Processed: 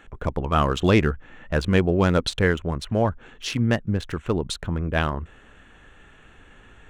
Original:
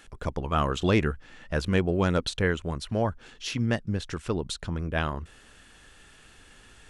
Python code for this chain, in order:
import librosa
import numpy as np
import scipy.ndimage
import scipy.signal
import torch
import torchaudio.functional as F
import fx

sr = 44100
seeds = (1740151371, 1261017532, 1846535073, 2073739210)

y = fx.wiener(x, sr, points=9)
y = y * librosa.db_to_amplitude(5.0)